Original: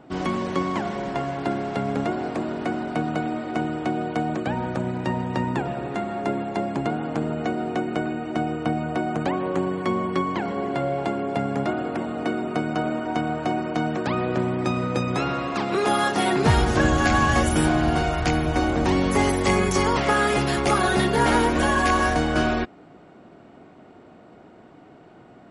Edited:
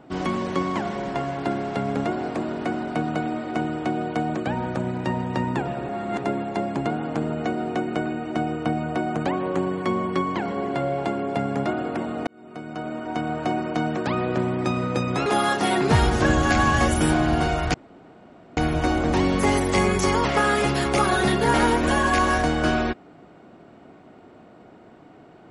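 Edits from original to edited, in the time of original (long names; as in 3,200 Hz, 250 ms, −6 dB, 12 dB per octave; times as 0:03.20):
0:05.89–0:06.24: reverse
0:12.27–0:13.44: fade in
0:15.26–0:15.81: remove
0:18.29: splice in room tone 0.83 s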